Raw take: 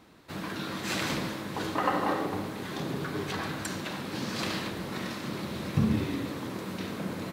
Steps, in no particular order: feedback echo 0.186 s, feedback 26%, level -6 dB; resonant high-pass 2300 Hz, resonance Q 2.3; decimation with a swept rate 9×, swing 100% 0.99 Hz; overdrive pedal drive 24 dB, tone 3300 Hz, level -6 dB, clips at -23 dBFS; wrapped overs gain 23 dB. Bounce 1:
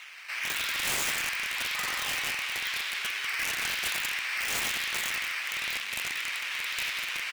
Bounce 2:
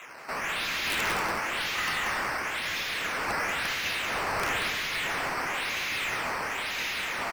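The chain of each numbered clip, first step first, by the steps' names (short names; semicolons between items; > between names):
decimation with a swept rate > feedback echo > overdrive pedal > resonant high-pass > wrapped overs; resonant high-pass > decimation with a swept rate > overdrive pedal > wrapped overs > feedback echo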